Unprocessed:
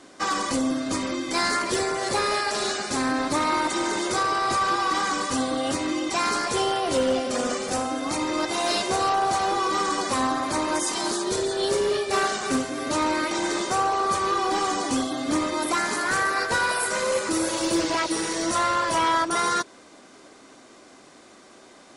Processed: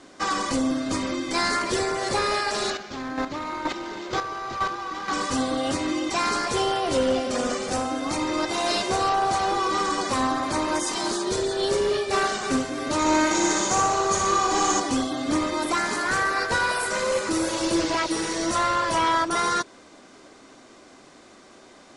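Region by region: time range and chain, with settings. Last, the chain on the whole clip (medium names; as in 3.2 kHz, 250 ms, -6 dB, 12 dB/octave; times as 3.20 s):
2.70–5.13 s: square tremolo 2.1 Hz, depth 60%, duty 15% + decimation joined by straight lines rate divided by 4×
12.99–14.80 s: peaking EQ 6.7 kHz +14.5 dB 0.23 oct + de-hum 261.2 Hz, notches 2 + flutter echo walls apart 10.5 m, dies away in 0.79 s
whole clip: low-pass 8.7 kHz 12 dB/octave; bass shelf 80 Hz +7.5 dB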